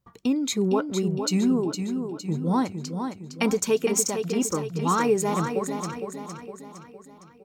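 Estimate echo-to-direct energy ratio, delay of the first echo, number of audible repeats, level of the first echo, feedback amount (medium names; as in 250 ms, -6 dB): -6.0 dB, 460 ms, 5, -7.0 dB, 49%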